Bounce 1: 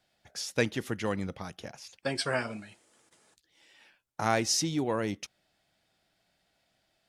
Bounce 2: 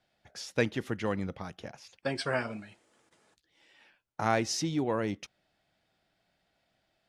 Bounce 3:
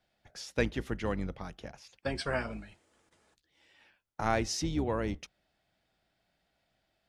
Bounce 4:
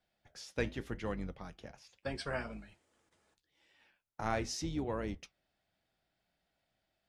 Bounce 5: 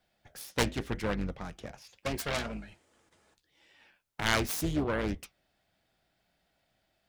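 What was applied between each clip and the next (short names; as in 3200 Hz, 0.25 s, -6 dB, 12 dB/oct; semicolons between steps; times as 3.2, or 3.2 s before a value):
high shelf 5400 Hz -11 dB
octaver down 2 oct, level -3 dB; gain -2 dB
flange 0.79 Hz, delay 3.9 ms, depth 7.1 ms, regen -73%; gain -1 dB
self-modulated delay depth 0.76 ms; gain +7 dB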